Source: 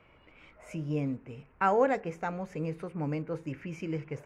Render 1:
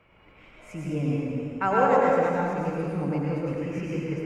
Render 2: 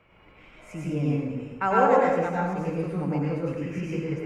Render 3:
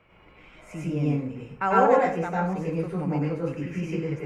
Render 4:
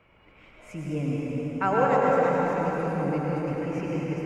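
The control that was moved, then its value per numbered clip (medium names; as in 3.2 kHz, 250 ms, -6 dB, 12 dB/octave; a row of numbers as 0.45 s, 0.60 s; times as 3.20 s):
plate-style reverb, RT60: 2.2 s, 1.1 s, 0.5 s, 5.1 s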